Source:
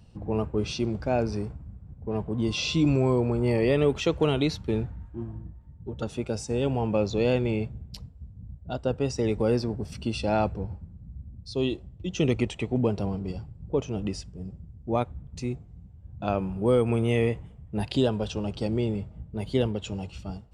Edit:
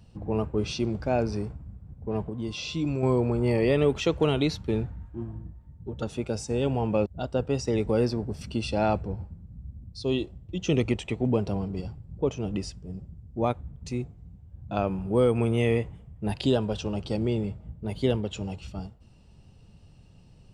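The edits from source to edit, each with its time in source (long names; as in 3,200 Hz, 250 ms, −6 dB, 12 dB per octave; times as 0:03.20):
0:02.30–0:03.03: clip gain −6 dB
0:07.06–0:08.57: remove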